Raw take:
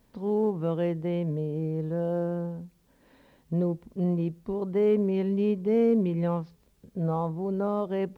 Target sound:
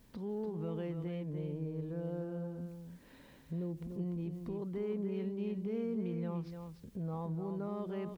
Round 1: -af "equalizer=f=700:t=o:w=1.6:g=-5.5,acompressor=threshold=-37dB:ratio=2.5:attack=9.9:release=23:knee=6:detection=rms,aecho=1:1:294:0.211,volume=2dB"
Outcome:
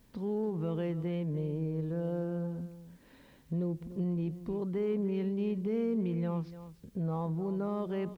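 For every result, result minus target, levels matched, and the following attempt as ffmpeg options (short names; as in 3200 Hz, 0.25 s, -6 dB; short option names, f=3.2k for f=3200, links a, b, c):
compressor: peak gain reduction -5.5 dB; echo-to-direct -6.5 dB
-af "equalizer=f=700:t=o:w=1.6:g=-5.5,acompressor=threshold=-46.5dB:ratio=2.5:attack=9.9:release=23:knee=6:detection=rms,aecho=1:1:294:0.211,volume=2dB"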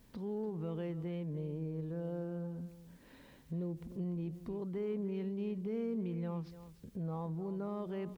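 echo-to-direct -6.5 dB
-af "equalizer=f=700:t=o:w=1.6:g=-5.5,acompressor=threshold=-46.5dB:ratio=2.5:attack=9.9:release=23:knee=6:detection=rms,aecho=1:1:294:0.447,volume=2dB"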